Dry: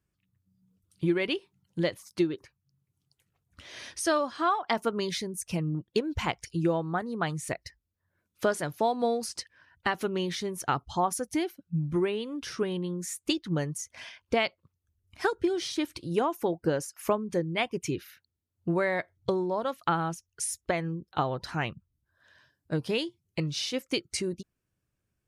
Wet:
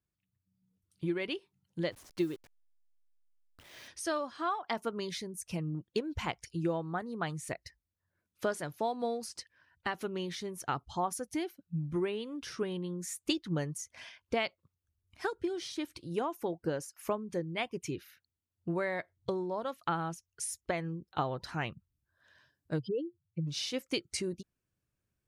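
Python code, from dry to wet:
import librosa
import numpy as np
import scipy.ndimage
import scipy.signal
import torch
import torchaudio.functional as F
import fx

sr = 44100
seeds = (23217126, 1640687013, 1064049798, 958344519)

y = fx.delta_hold(x, sr, step_db=-46.0, at=(1.91, 3.87), fade=0.02)
y = fx.spec_expand(y, sr, power=3.4, at=(22.78, 23.46), fade=0.02)
y = fx.rider(y, sr, range_db=10, speed_s=2.0)
y = y * librosa.db_to_amplitude(-6.0)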